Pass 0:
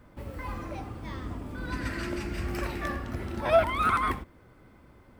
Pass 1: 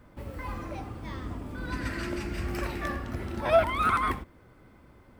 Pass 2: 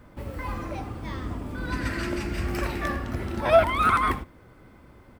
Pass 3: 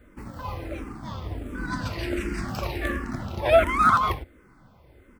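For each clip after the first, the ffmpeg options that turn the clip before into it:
-af anull
-af "aecho=1:1:78:0.0668,volume=1.58"
-filter_complex "[0:a]asplit=2[s0][s1];[s1]aeval=exprs='sgn(val(0))*max(abs(val(0))-0.02,0)':c=same,volume=0.596[s2];[s0][s2]amix=inputs=2:normalize=0,asplit=2[s3][s4];[s4]afreqshift=-1.4[s5];[s3][s5]amix=inputs=2:normalize=1"

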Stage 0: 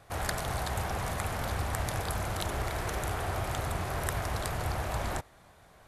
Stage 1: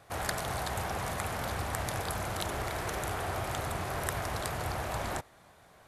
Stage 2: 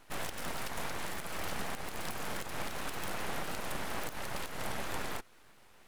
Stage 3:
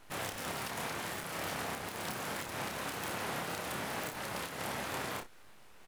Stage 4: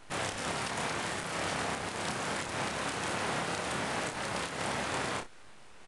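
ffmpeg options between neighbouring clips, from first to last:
-af "lowshelf=f=68:g=-10.5"
-af "alimiter=limit=0.0668:level=0:latency=1:release=164,aeval=exprs='abs(val(0))':c=same"
-af "aecho=1:1:29|60:0.562|0.211,afftfilt=real='re*lt(hypot(re,im),0.0794)':imag='im*lt(hypot(re,im),0.0794)':win_size=1024:overlap=0.75"
-af "aresample=22050,aresample=44100,volume=1.68"

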